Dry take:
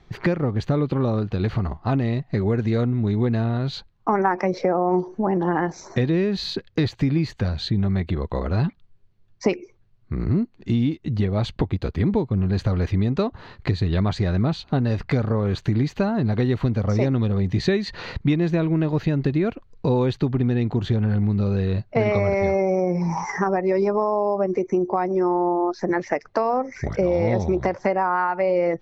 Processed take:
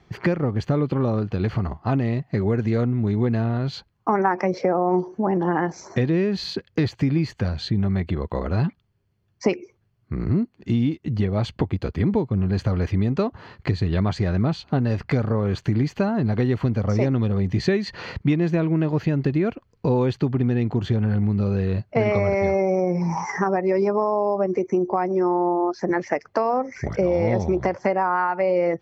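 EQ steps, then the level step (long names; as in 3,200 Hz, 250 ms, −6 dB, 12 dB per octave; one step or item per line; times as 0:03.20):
high-pass filter 63 Hz
notch filter 3,800 Hz, Q 8.1
0.0 dB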